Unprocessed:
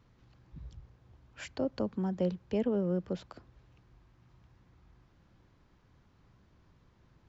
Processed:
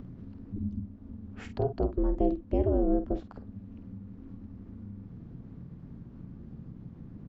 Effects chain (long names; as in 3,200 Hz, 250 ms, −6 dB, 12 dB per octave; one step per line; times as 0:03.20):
spectral tilt −4 dB per octave
ring modulation 150 Hz
upward compression, threshold −36 dBFS
double-tracking delay 49 ms −10.5 dB